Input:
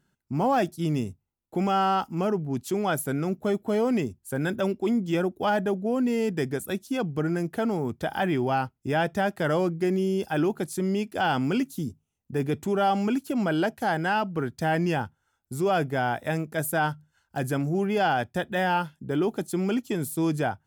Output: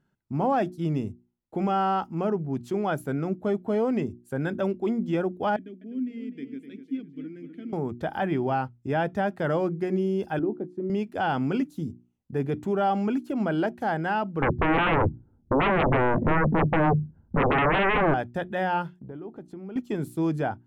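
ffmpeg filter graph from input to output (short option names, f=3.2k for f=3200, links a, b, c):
-filter_complex "[0:a]asettb=1/sr,asplit=3[a][b][c];[a]atrim=end=5.564[d];[b]atrim=start=5.56:end=7.73,asetpts=PTS-STARTPTS,afade=t=in:d=0.004:c=qsin,afade=t=out:st=2.166:d=0.004:c=qsin,asplit=3[e][f][g];[e]bandpass=f=270:t=q:w=8,volume=0dB[h];[f]bandpass=f=2.29k:t=q:w=8,volume=-6dB[i];[g]bandpass=f=3.01k:t=q:w=8,volume=-9dB[j];[h][i][j]amix=inputs=3:normalize=0,highshelf=f=6.7k:g=11.5,asplit=2[k][l];[l]adelay=251,lowpass=f=4.4k:p=1,volume=-9dB,asplit=2[m][n];[n]adelay=251,lowpass=f=4.4k:p=1,volume=0.44,asplit=2[o][p];[p]adelay=251,lowpass=f=4.4k:p=1,volume=0.44,asplit=2[q][r];[r]adelay=251,lowpass=f=4.4k:p=1,volume=0.44,asplit=2[s][t];[t]adelay=251,lowpass=f=4.4k:p=1,volume=0.44[u];[k][m][o][q][s][u]amix=inputs=6:normalize=0,atrim=end_sample=95697[v];[c]atrim=start=7.726[w];[d][v]acrossfade=d=0.004:c1=hsin:c2=qsin[x];[x][w]acrossfade=d=0.004:c1=qsin:c2=hsin,asettb=1/sr,asplit=3[y][z][aa];[y]atrim=end=10.394[ab];[z]atrim=start=10.39:end=10.9,asetpts=PTS-STARTPTS,afade=t=in:d=0.004:c=qsin,afade=t=out:st=0.506:d=0.004:c=qsin,bandpass=f=310:t=q:w=1.4,asplit=2[ac][ad];[ad]adelay=19,volume=-12dB[ae];[ac][ae]amix=inputs=2:normalize=0,atrim=end_sample=22491[af];[aa]atrim=start=10.896[ag];[ab][af]acrossfade=d=0.004:c1=hsin:c2=qsin[ah];[ah][ag]acrossfade=d=0.004:c1=qsin:c2=hsin,asettb=1/sr,asplit=3[ai][aj][ak];[ai]atrim=end=14.424[al];[aj]atrim=start=14.42:end=18.14,asetpts=PTS-STARTPTS,afade=t=in:d=0.004:c=qsin,afade=t=out:st=3.716:d=0.004:c=qsin,lowpass=f=240:t=q:w=1.7,aeval=exprs='0.141*sin(PI/2*8.91*val(0)/0.141)':c=same[am];[ak]atrim=start=18.136[an];[al][am]acrossfade=d=0.004:c1=hsin:c2=qsin[ao];[ao][an]acrossfade=d=0.004:c1=qsin:c2=hsin,asettb=1/sr,asplit=3[ap][aq][ar];[ap]atrim=end=18.994[as];[aq]atrim=start=18.99:end=19.76,asetpts=PTS-STARTPTS,afade=t=in:d=0.004:c=qsin,afade=t=out:st=0.766:d=0.004:c=qsin,lowpass=f=1.4k:p=1,acompressor=threshold=-37dB:ratio=4:attack=3.2:release=140:knee=1:detection=peak[at];[ar]atrim=start=19.756[au];[as][at]acrossfade=d=0.004:c1=hsin:c2=qsin[av];[av][au]acrossfade=d=0.004:c1=qsin:c2=hsin,lowpass=f=1.6k:p=1,bandreject=f=60:t=h:w=6,bandreject=f=120:t=h:w=6,bandreject=f=180:t=h:w=6,bandreject=f=240:t=h:w=6,bandreject=f=300:t=h:w=6,bandreject=f=360:t=h:w=6"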